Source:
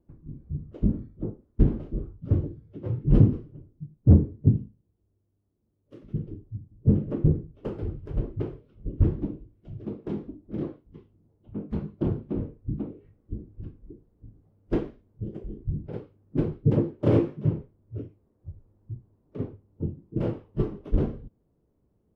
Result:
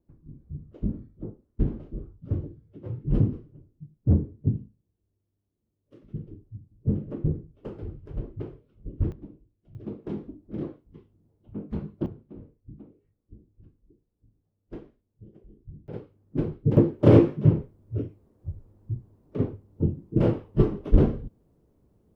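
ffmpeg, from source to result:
ffmpeg -i in.wav -af "asetnsamples=nb_out_samples=441:pad=0,asendcmd='9.12 volume volume -13dB;9.75 volume volume -1.5dB;12.06 volume volume -14.5dB;15.88 volume volume -1.5dB;16.77 volume volume 6dB',volume=-5dB" out.wav

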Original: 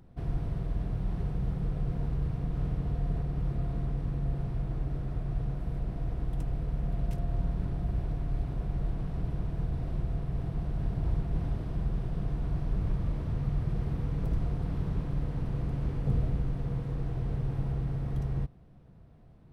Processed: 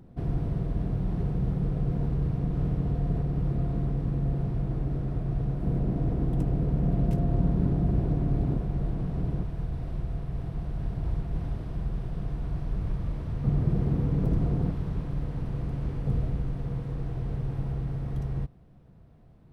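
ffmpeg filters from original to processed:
ffmpeg -i in.wav -af "asetnsamples=nb_out_samples=441:pad=0,asendcmd='5.63 equalizer g 13.5;8.57 equalizer g 7;9.43 equalizer g -0.5;13.44 equalizer g 10;14.71 equalizer g 1',equalizer=frequency=260:width_type=o:width=2.8:gain=7.5" out.wav

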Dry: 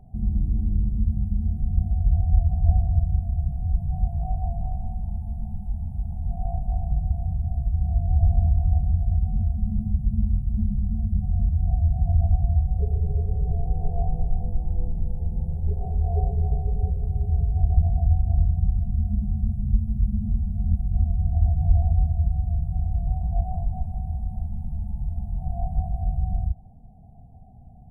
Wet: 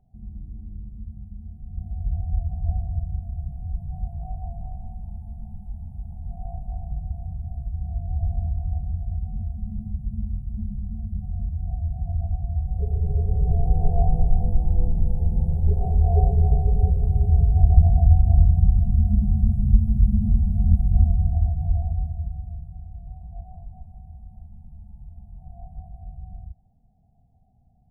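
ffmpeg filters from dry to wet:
ffmpeg -i in.wav -af "volume=5dB,afade=type=in:start_time=1.64:duration=0.42:silence=0.398107,afade=type=in:start_time=12.49:duration=1.25:silence=0.281838,afade=type=out:start_time=21.01:duration=0.49:silence=0.421697,afade=type=out:start_time=21.5:duration=1.31:silence=0.281838" out.wav

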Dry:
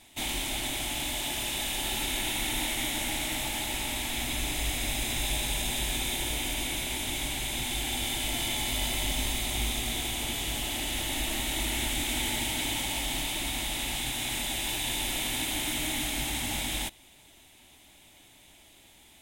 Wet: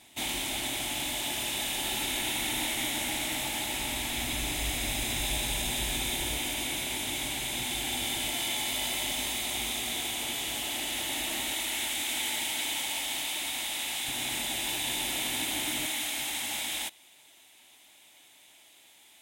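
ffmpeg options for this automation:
ffmpeg -i in.wav -af "asetnsamples=nb_out_samples=441:pad=0,asendcmd='3.8 highpass f 45;6.37 highpass f 140;8.3 highpass f 340;11.54 highpass f 750;14.08 highpass f 190;15.86 highpass f 750',highpass=frequency=120:poles=1" out.wav

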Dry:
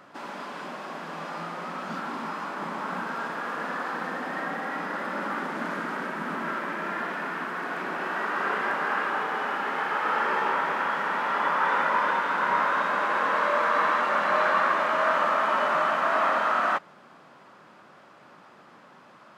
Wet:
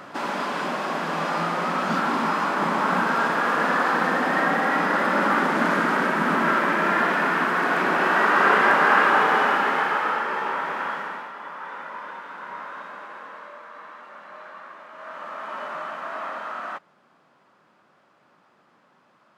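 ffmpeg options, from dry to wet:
ffmpeg -i in.wav -af "volume=20.5dB,afade=type=out:start_time=9.33:duration=0.91:silence=0.281838,afade=type=out:start_time=10.89:duration=0.43:silence=0.281838,afade=type=out:start_time=12.81:duration=0.81:silence=0.446684,afade=type=in:start_time=14.92:duration=0.68:silence=0.298538" out.wav

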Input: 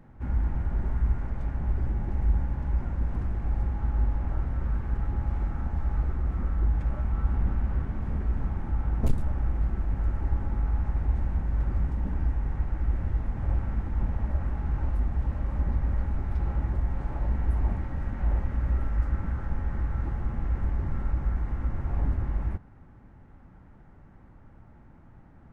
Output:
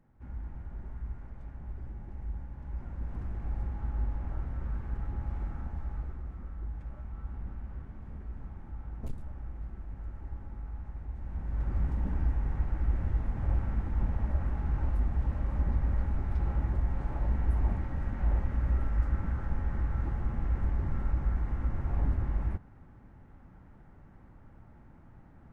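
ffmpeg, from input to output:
ffmpeg -i in.wav -af "volume=5dB,afade=type=in:start_time=2.53:duration=0.86:silence=0.446684,afade=type=out:start_time=5.5:duration=0.88:silence=0.446684,afade=type=in:start_time=11.18:duration=0.72:silence=0.266073" out.wav

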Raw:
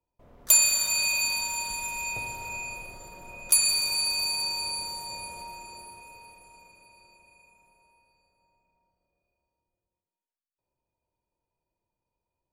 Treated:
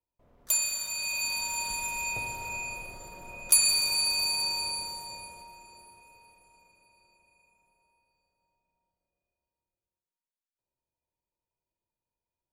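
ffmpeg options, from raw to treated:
ffmpeg -i in.wav -af "afade=type=in:start_time=0.98:duration=0.72:silence=0.398107,afade=type=out:start_time=4.56:duration=0.91:silence=0.398107" out.wav

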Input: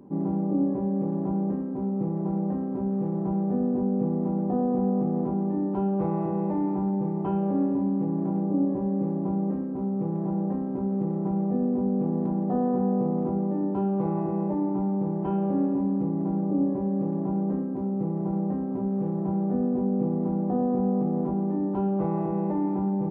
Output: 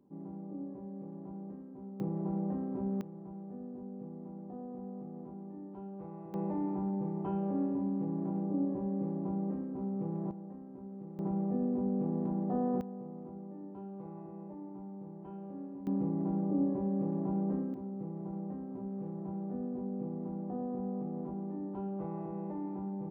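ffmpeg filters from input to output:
ffmpeg -i in.wav -af "asetnsamples=nb_out_samples=441:pad=0,asendcmd='2 volume volume -7dB;3.01 volume volume -19dB;6.34 volume volume -8dB;10.31 volume volume -18.5dB;11.19 volume volume -7dB;12.81 volume volume -19dB;15.87 volume volume -6dB;17.74 volume volume -12.5dB',volume=-17.5dB" out.wav

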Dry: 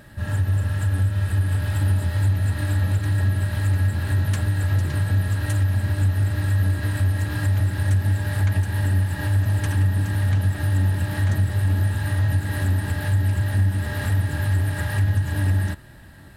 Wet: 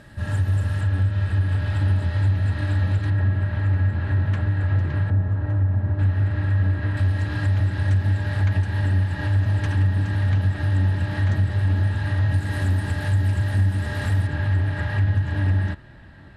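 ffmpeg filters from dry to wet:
ffmpeg -i in.wav -af "asetnsamples=nb_out_samples=441:pad=0,asendcmd='0.81 lowpass f 4300;3.1 lowpass f 2300;5.1 lowpass f 1100;5.99 lowpass f 2500;6.97 lowpass f 4600;12.34 lowpass f 7600;14.27 lowpass f 3500',lowpass=8400" out.wav

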